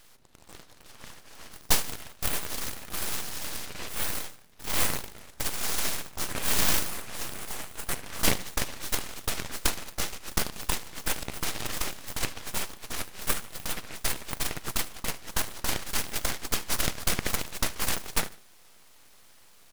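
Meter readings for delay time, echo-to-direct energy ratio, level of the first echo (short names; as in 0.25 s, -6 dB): 74 ms, -19.0 dB, -20.0 dB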